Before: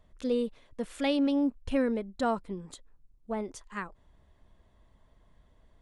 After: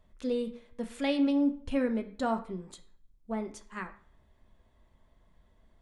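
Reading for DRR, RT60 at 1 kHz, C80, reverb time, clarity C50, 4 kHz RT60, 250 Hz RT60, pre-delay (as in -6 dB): 5.0 dB, 0.50 s, 16.0 dB, 0.55 s, 13.0 dB, 0.45 s, 0.60 s, 3 ms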